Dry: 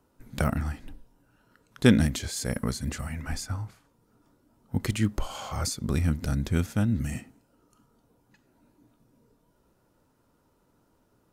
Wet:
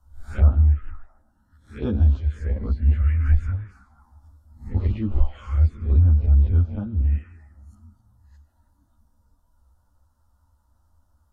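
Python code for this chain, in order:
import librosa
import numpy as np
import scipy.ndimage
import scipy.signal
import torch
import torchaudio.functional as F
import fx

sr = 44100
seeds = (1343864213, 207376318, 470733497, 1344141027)

p1 = fx.spec_swells(x, sr, rise_s=0.38)
p2 = p1 + fx.echo_stepped(p1, sr, ms=158, hz=2600.0, octaves=-0.7, feedback_pct=70, wet_db=-10.5, dry=0)
p3 = fx.env_lowpass_down(p2, sr, base_hz=1500.0, full_db=-25.5)
p4 = fx.env_phaser(p3, sr, low_hz=400.0, high_hz=2000.0, full_db=-21.5)
p5 = fx.low_shelf_res(p4, sr, hz=100.0, db=10.5, q=3.0)
p6 = fx.rider(p5, sr, range_db=5, speed_s=2.0)
y = fx.ensemble(p6, sr)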